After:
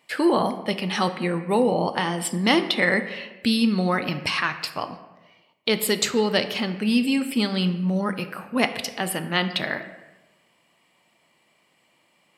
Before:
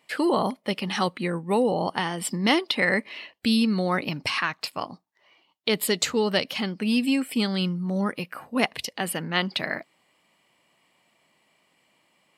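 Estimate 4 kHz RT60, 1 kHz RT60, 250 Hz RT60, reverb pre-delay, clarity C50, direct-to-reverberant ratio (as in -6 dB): 0.70 s, 0.90 s, 1.1 s, 5 ms, 11.0 dB, 8.5 dB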